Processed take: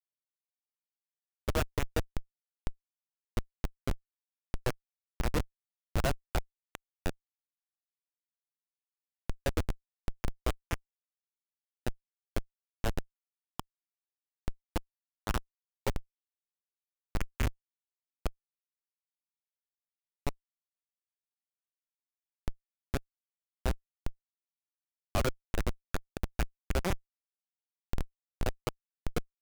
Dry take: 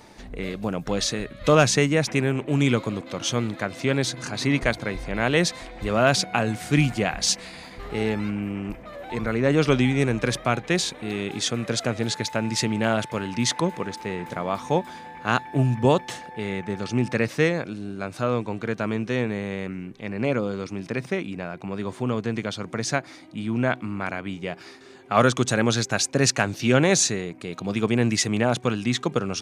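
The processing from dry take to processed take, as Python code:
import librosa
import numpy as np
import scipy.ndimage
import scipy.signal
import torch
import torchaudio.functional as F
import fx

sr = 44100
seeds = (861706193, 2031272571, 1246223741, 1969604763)

y = fx.brickwall_bandpass(x, sr, low_hz=190.0, high_hz=3300.0)
y = fx.filter_lfo_highpass(y, sr, shape='sine', hz=10.0, low_hz=460.0, high_hz=2600.0, q=1.5)
y = fx.schmitt(y, sr, flips_db=-14.0)
y = F.gain(torch.from_numpy(y), 2.0).numpy()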